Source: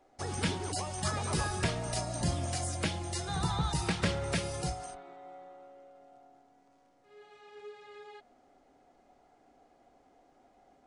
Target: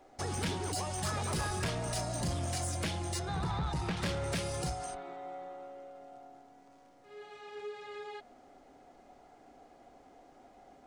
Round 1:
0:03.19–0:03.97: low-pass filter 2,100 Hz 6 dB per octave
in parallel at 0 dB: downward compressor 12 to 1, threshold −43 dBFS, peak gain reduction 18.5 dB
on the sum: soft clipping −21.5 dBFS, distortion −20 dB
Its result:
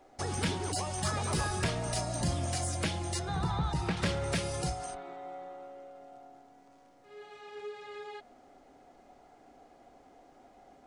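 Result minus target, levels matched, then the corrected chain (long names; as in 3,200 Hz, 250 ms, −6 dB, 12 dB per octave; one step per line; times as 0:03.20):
soft clipping: distortion −9 dB
0:03.19–0:03.97: low-pass filter 2,100 Hz 6 dB per octave
in parallel at 0 dB: downward compressor 12 to 1, threshold −43 dBFS, peak gain reduction 18.5 dB
on the sum: soft clipping −29 dBFS, distortion −11 dB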